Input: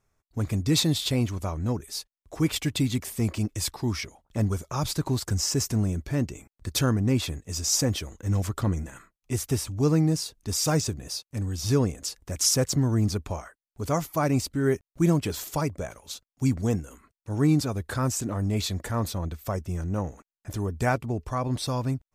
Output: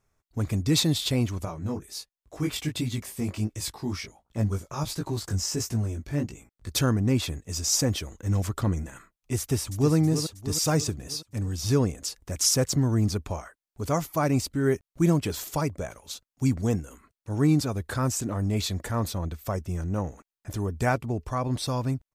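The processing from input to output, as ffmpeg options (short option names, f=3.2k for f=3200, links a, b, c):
-filter_complex "[0:a]asettb=1/sr,asplit=3[a][b][c];[a]atrim=end=1.454[d];[b]atrim=start=1.45:end=6.69,asetpts=PTS-STARTPTS,afade=t=in:d=0.004:c=qsin,afade=t=out:st=5.236:d=0.004:c=qsin,flanger=delay=17:depth=4.3:speed=1.4[e];[c]atrim=start=6.686[f];[d][e]acrossfade=d=0.004:c1=hsin:c2=qsin[g];[g][f]acrossfade=d=0.004:c1=qsin:c2=hsin,asplit=2[h][i];[i]afade=t=in:st=9.39:d=0.01,afade=t=out:st=9.94:d=0.01,aecho=0:1:320|640|960|1280|1600|1920:0.354813|0.195147|0.107331|0.0590321|0.0324676|0.0178572[j];[h][j]amix=inputs=2:normalize=0"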